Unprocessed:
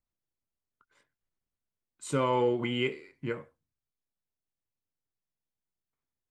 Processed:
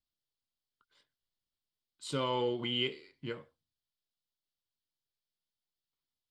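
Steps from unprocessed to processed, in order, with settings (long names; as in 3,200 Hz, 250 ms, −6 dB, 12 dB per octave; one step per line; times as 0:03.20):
flat-topped bell 3,900 Hz +12 dB 1 octave
level −6 dB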